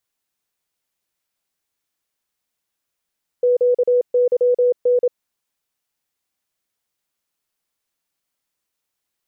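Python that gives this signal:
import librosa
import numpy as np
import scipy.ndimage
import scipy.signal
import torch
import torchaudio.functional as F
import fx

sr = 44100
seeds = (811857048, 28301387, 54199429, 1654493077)

y = fx.morse(sr, text='QYN', wpm=27, hz=492.0, level_db=-12.0)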